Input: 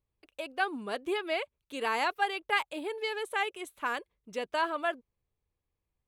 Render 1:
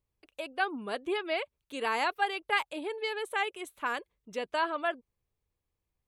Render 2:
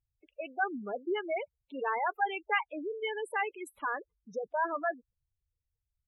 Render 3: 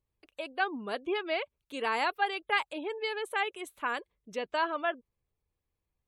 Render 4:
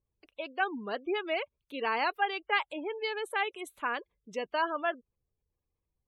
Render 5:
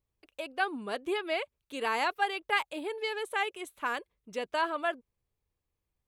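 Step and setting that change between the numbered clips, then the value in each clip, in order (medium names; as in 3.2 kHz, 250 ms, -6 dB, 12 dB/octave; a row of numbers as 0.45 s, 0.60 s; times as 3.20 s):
spectral gate, under each frame's peak: -45 dB, -10 dB, -35 dB, -25 dB, -60 dB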